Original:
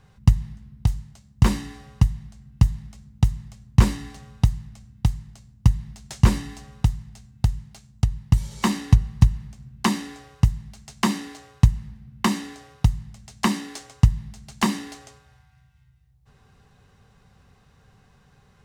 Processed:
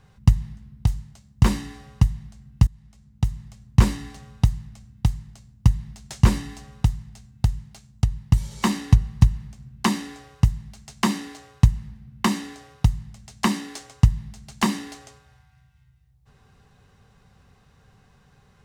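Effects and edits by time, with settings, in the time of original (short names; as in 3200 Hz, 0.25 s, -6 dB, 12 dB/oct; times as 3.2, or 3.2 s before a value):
2.67–4 fade in equal-power, from -21 dB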